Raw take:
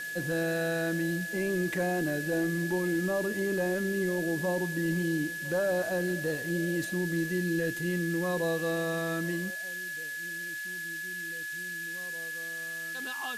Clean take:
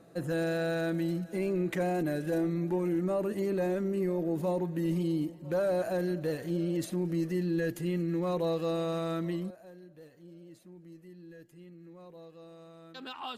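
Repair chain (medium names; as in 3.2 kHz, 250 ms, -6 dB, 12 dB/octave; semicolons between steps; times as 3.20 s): band-stop 1.7 kHz, Q 30; noise print and reduce 14 dB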